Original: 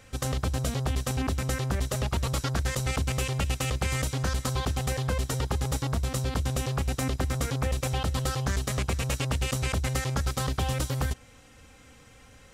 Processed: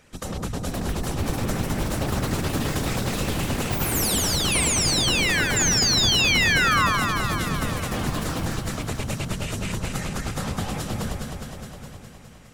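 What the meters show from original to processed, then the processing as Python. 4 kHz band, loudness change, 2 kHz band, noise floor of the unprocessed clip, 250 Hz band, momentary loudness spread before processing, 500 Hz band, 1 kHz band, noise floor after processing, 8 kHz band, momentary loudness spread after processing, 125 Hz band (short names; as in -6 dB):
+12.0 dB, +6.5 dB, +11.5 dB, -53 dBFS, +6.5 dB, 1 LU, +3.5 dB, +6.5 dB, -43 dBFS, +10.0 dB, 13 LU, 0.0 dB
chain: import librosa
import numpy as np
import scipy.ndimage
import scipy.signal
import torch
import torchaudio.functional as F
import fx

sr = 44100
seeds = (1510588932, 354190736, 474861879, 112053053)

p1 = x + 10.0 ** (-16.5 / 20.0) * np.pad(x, (int(840 * sr / 1000.0), 0))[:len(x)]
p2 = fx.whisperise(p1, sr, seeds[0])
p3 = fx.spec_paint(p2, sr, seeds[1], shape='fall', start_s=5.56, length_s=1.31, low_hz=1000.0, high_hz=7400.0, level_db=-20.0)
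p4 = p3 + fx.echo_alternate(p3, sr, ms=103, hz=1200.0, feedback_pct=83, wet_db=-2.5, dry=0)
p5 = fx.echo_pitch(p4, sr, ms=583, semitones=6, count=3, db_per_echo=-3.0)
y = p5 * librosa.db_to_amplitude(-2.5)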